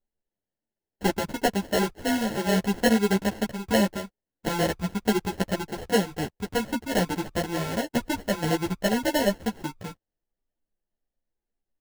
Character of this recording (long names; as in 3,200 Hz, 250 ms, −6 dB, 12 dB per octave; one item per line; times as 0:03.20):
aliases and images of a low sample rate 1,200 Hz, jitter 0%
a shimmering, thickened sound